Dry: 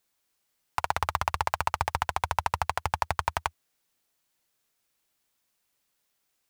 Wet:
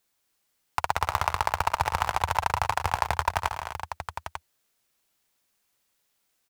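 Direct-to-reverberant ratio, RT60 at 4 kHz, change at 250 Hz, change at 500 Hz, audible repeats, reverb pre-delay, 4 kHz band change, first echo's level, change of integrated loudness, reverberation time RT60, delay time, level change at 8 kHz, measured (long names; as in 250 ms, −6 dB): no reverb audible, no reverb audible, +2.5 dB, +2.5 dB, 6, no reverb audible, +2.5 dB, −18.0 dB, +2.0 dB, no reverb audible, 112 ms, +2.5 dB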